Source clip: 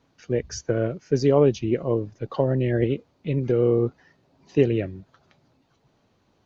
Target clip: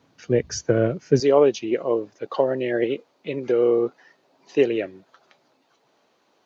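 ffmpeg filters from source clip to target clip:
-af "asetnsamples=n=441:p=0,asendcmd='1.2 highpass f 400',highpass=100,volume=4.5dB"

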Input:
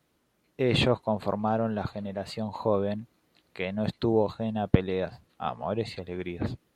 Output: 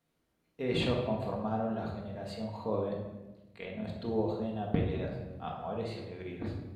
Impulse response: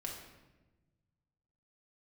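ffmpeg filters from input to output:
-filter_complex "[0:a]asplit=3[a][b][c];[a]afade=t=out:st=2.88:d=0.02[d];[b]tremolo=f=40:d=0.71,afade=t=in:st=2.88:d=0.02,afade=t=out:st=4.05:d=0.02[e];[c]afade=t=in:st=4.05:d=0.02[f];[d][e][f]amix=inputs=3:normalize=0[g];[1:a]atrim=start_sample=2205[h];[g][h]afir=irnorm=-1:irlink=0,volume=-6dB"

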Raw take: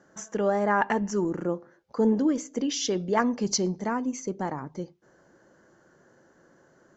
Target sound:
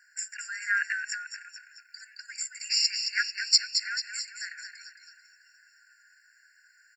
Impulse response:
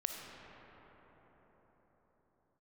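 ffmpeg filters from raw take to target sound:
-filter_complex "[0:a]asettb=1/sr,asplit=3[a][b][c];[a]atrim=end=0.814[d];[b]atrim=start=0.81:end=1.46,asetpts=PTS-STARTPTS,afade=t=in:d=0.004:c=qsin,afade=t=out:st=0.646:d=0.004:c=qsin,acompressor=threshold=-29dB:ratio=6[e];[c]atrim=start=1.456[f];[d][e]acrossfade=d=0.004:c1=hsin:c2=qsin[g];[g][f]acrossfade=d=0.004:c1=qsin:c2=hsin,highshelf=f=2.6k:g=11,asplit=8[h][i][j][k][l][m][n][o];[i]adelay=220,afreqshift=-85,volume=-7dB[p];[j]adelay=440,afreqshift=-170,volume=-12.4dB[q];[k]adelay=660,afreqshift=-255,volume=-17.7dB[r];[l]adelay=880,afreqshift=-340,volume=-23.1dB[s];[m]adelay=1100,afreqshift=-425,volume=-28.4dB[t];[n]adelay=1320,afreqshift=-510,volume=-33.8dB[u];[o]adelay=1540,afreqshift=-595,volume=-39.1dB[v];[h][p][q][r][s][t][u][v]amix=inputs=8:normalize=0,afftfilt=real='re*eq(mod(floor(b*sr/1024/1400),2),1)':imag='im*eq(mod(floor(b*sr/1024/1400),2),1)':win_size=1024:overlap=0.75,volume=2.5dB"

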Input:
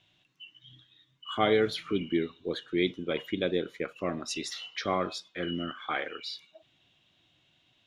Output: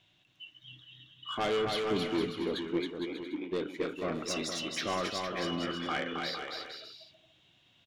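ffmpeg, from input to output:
-filter_complex "[0:a]asplit=3[a][b][c];[a]afade=t=out:st=2.77:d=0.02[d];[b]asplit=3[e][f][g];[e]bandpass=f=300:t=q:w=8,volume=0dB[h];[f]bandpass=f=870:t=q:w=8,volume=-6dB[i];[g]bandpass=f=2.24k:t=q:w=8,volume=-9dB[j];[h][i][j]amix=inputs=3:normalize=0,afade=t=in:st=2.77:d=0.02,afade=t=out:st=3.51:d=0.02[k];[c]afade=t=in:st=3.51:d=0.02[l];[d][k][l]amix=inputs=3:normalize=0,asoftclip=type=tanh:threshold=-26.5dB,aecho=1:1:270|459|591.3|683.9|748.7:0.631|0.398|0.251|0.158|0.1"

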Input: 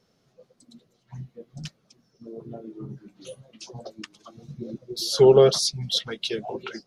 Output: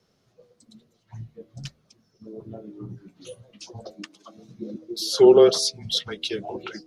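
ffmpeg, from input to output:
-filter_complex "[0:a]asettb=1/sr,asplit=3[a][b][c];[a]atrim=end=3.904[d];[b]atrim=start=3.9:end=5.85,asetpts=PTS-STARTPTS,afade=t=in:d=0.004:c=qsin,afade=t=out:st=1.946:d=0.004:c=qsin,lowshelf=f=170:t=q:w=1.5:g=-11.5[e];[c]atrim=start=5.846[f];[d][e]acrossfade=d=0.004:c1=hsin:c2=qsin[g];[g][f]acrossfade=d=0.004:c1=qsin:c2=hsin,bandreject=f=83.44:t=h:w=4,bandreject=f=166.88:t=h:w=4,bandreject=f=250.32:t=h:w=4,bandreject=f=333.76:t=h:w=4,bandreject=f=417.2:t=h:w=4,bandreject=f=500.64:t=h:w=4,bandreject=f=584.08:t=h:w=4,bandreject=f=667.52:t=h:w=4,bandreject=f=750.96:t=h:w=4,afreqshift=-15"

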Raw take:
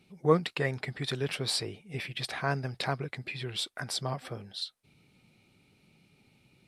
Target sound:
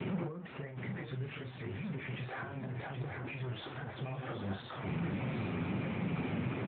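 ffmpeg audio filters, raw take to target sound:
-filter_complex "[0:a]aeval=exprs='val(0)+0.5*0.0501*sgn(val(0))':c=same,lowpass=1.7k,asplit=3[a][b][c];[a]afade=t=out:st=0.7:d=0.02[d];[b]equalizer=f=600:w=0.46:g=-10,afade=t=in:st=0.7:d=0.02,afade=t=out:st=1.93:d=0.02[e];[c]afade=t=in:st=1.93:d=0.02[f];[d][e][f]amix=inputs=3:normalize=0,acompressor=threshold=-30dB:ratio=16,alimiter=level_in=7.5dB:limit=-24dB:level=0:latency=1:release=234,volume=-7.5dB,asplit=3[g][h][i];[g]afade=t=out:st=3.04:d=0.02[j];[h]asoftclip=type=hard:threshold=-37.5dB,afade=t=in:st=3.04:d=0.02,afade=t=out:st=3.94:d=0.02[k];[i]afade=t=in:st=3.94:d=0.02[l];[j][k][l]amix=inputs=3:normalize=0,flanger=delay=7.5:depth=4.6:regen=57:speed=1.7:shape=sinusoidal,asplit=2[m][n];[n]adelay=41,volume=-7dB[o];[m][o]amix=inputs=2:normalize=0,asplit=2[p][q];[q]aecho=0:1:773|1546|2319|3092:0.447|0.134|0.0402|0.0121[r];[p][r]amix=inputs=2:normalize=0,volume=1.5dB" -ar 8000 -c:a libopencore_amrnb -b:a 10200

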